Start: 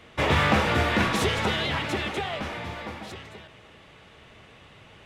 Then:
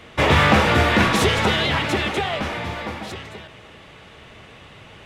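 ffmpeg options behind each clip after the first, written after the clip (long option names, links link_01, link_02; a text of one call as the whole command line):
ffmpeg -i in.wav -af "acontrast=73" out.wav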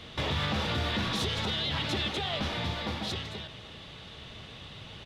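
ffmpeg -i in.wav -af "firequalizer=gain_entry='entry(150,0);entry(350,-5);entry(2300,-6);entry(3600,6);entry(7500,-5)':delay=0.05:min_phase=1,alimiter=limit=-21.5dB:level=0:latency=1:release=383" out.wav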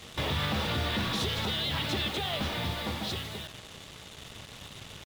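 ffmpeg -i in.wav -af "acrusher=bits=6:mix=0:aa=0.5" out.wav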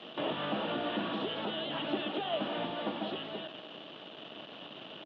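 ffmpeg -i in.wav -filter_complex "[0:a]alimiter=level_in=1dB:limit=-24dB:level=0:latency=1:release=321,volume=-1dB,acrossover=split=2600[link_01][link_02];[link_02]acompressor=threshold=-50dB:ratio=4:attack=1:release=60[link_03];[link_01][link_03]amix=inputs=2:normalize=0,highpass=frequency=190:width=0.5412,highpass=frequency=190:width=1.3066,equalizer=frequency=310:width_type=q:width=4:gain=8,equalizer=frequency=640:width_type=q:width=4:gain=8,equalizer=frequency=2100:width_type=q:width=4:gain=-9,equalizer=frequency=3000:width_type=q:width=4:gain=9,lowpass=frequency=3400:width=0.5412,lowpass=frequency=3400:width=1.3066" out.wav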